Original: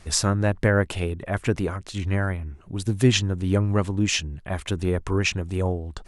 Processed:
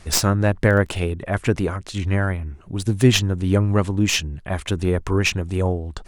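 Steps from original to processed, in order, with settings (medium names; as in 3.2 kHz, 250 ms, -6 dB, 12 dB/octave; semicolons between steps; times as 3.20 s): tracing distortion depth 0.053 ms; 0.57–0.98 s: crackle 14 per s -29 dBFS; trim +3.5 dB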